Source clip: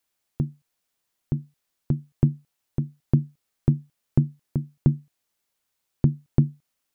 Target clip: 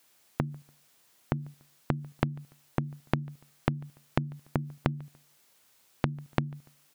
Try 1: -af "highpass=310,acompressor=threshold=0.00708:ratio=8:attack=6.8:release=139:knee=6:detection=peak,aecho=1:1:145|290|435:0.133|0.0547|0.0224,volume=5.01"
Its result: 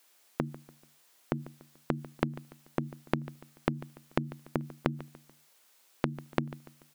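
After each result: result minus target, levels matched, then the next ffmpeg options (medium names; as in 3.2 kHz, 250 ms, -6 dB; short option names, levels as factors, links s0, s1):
echo-to-direct +9.5 dB; 125 Hz band -3.5 dB
-af "highpass=310,acompressor=threshold=0.00708:ratio=8:attack=6.8:release=139:knee=6:detection=peak,aecho=1:1:145|290:0.0447|0.0183,volume=5.01"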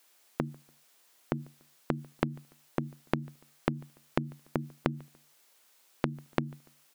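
125 Hz band -3.5 dB
-af "highpass=91,acompressor=threshold=0.00708:ratio=8:attack=6.8:release=139:knee=6:detection=peak,aecho=1:1:145|290:0.0447|0.0183,volume=5.01"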